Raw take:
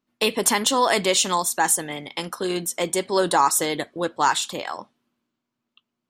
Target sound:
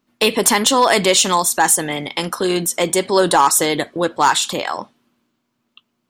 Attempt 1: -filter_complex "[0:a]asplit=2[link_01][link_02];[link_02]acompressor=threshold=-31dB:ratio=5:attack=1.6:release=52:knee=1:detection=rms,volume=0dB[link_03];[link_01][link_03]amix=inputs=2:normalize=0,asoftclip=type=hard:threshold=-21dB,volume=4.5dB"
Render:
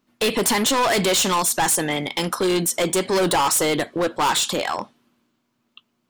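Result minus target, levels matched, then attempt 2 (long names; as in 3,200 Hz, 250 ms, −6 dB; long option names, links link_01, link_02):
hard clipping: distortion +17 dB
-filter_complex "[0:a]asplit=2[link_01][link_02];[link_02]acompressor=threshold=-31dB:ratio=5:attack=1.6:release=52:knee=1:detection=rms,volume=0dB[link_03];[link_01][link_03]amix=inputs=2:normalize=0,asoftclip=type=hard:threshold=-9.5dB,volume=4.5dB"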